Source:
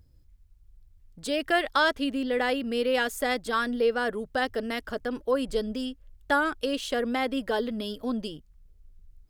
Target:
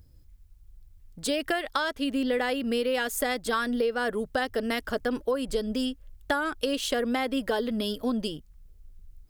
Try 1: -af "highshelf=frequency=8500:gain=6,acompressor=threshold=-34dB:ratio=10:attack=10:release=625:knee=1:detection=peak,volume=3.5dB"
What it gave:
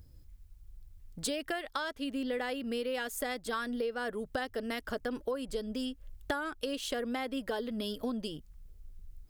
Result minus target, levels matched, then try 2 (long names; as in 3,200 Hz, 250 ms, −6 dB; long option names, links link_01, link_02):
downward compressor: peak gain reduction +7.5 dB
-af "highshelf=frequency=8500:gain=6,acompressor=threshold=-25.5dB:ratio=10:attack=10:release=625:knee=1:detection=peak,volume=3.5dB"